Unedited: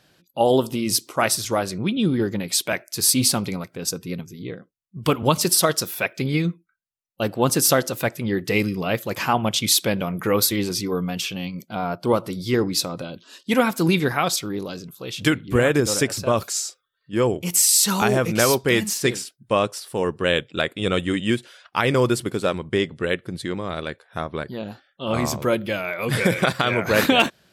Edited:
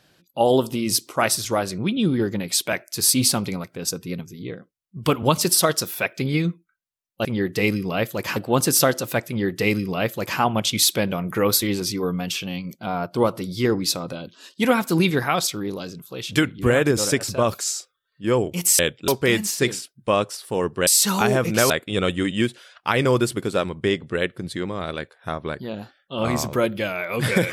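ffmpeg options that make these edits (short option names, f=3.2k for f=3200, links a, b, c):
-filter_complex "[0:a]asplit=7[a][b][c][d][e][f][g];[a]atrim=end=7.252[h];[b]atrim=start=8.168:end=9.282[i];[c]atrim=start=7.248:end=17.682[j];[d]atrim=start=20.298:end=20.592[k];[e]atrim=start=18.508:end=20.302[l];[f]atrim=start=17.678:end=18.512[m];[g]atrim=start=20.588[n];[h][i]acrossfade=d=0.004:c1=hsin:c2=hsin[o];[o][j]acrossfade=d=0.004:c1=hsin:c2=hsin[p];[p][k]acrossfade=d=0.004:c1=hsin:c2=hsin[q];[q][l]acrossfade=d=0.004:c1=hsin:c2=hsin[r];[r][m]acrossfade=d=0.004:c1=hsin:c2=hsin[s];[s][n]acrossfade=d=0.004:c1=hsin:c2=hsin"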